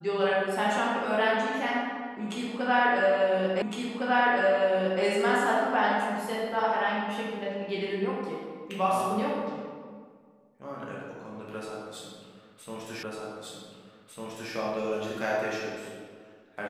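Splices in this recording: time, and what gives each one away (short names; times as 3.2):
3.62 repeat of the last 1.41 s
13.03 repeat of the last 1.5 s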